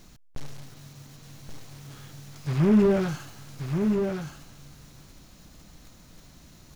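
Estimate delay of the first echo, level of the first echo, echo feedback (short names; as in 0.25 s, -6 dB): 1.129 s, -5.5 dB, no steady repeat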